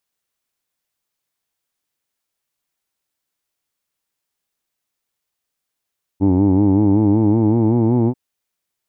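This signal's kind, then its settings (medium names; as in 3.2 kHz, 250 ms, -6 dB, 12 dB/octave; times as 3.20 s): formant-synthesis vowel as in who'd, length 1.94 s, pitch 93.3 Hz, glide +4.5 st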